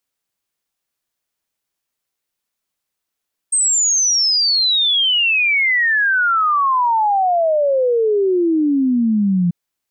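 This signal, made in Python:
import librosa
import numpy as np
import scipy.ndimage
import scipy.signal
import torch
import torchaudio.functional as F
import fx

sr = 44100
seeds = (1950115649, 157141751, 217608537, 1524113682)

y = fx.ess(sr, length_s=5.99, from_hz=8500.0, to_hz=170.0, level_db=-12.5)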